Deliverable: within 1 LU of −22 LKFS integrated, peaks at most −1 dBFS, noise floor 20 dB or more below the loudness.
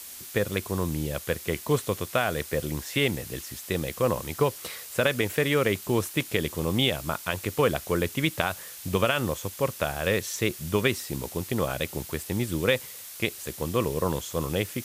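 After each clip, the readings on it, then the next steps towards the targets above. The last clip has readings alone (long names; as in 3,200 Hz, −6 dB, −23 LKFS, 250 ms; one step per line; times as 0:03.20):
background noise floor −42 dBFS; target noise floor −48 dBFS; integrated loudness −28.0 LKFS; sample peak −4.5 dBFS; target loudness −22.0 LKFS
→ noise reduction from a noise print 6 dB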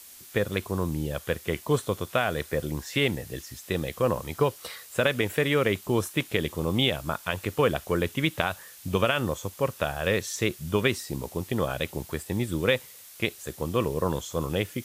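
background noise floor −48 dBFS; integrated loudness −28.0 LKFS; sample peak −4.5 dBFS; target loudness −22.0 LKFS
→ level +6 dB
brickwall limiter −1 dBFS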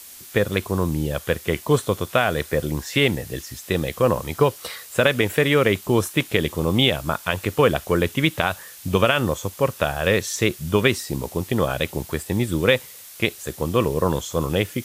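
integrated loudness −22.0 LKFS; sample peak −1.0 dBFS; background noise floor −42 dBFS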